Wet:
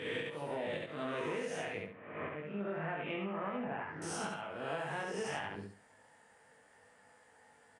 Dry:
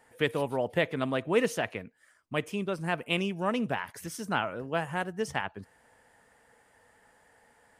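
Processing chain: reverse spectral sustain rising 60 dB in 0.91 s; 1.77–4.02 s: low-pass 2.2 kHz 24 dB/octave; slow attack 454 ms; high-pass 86 Hz; doubling 20 ms -2 dB; feedback delay 69 ms, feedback 23%, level -4 dB; compression 16:1, threshold -27 dBFS, peak gain reduction 13.5 dB; trim -7.5 dB; Vorbis 64 kbps 22.05 kHz

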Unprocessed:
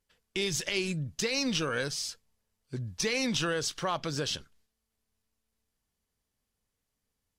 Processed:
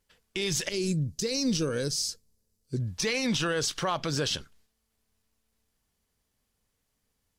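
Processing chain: 0.69–2.80 s: high-order bell 1.5 kHz -12 dB 2.7 oct; peak limiter -24.5 dBFS, peak gain reduction 7.5 dB; trim +5.5 dB

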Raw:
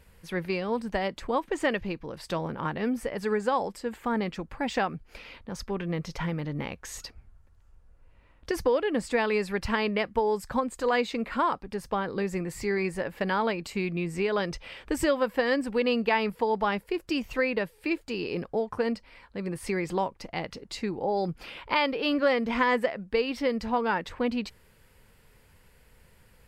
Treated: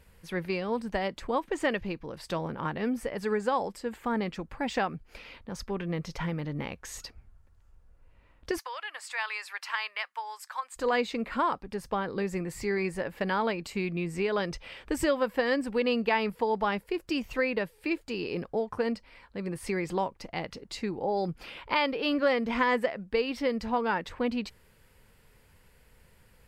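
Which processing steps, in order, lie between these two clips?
8.58–10.76 s: high-pass 960 Hz 24 dB/octave; trim -1.5 dB

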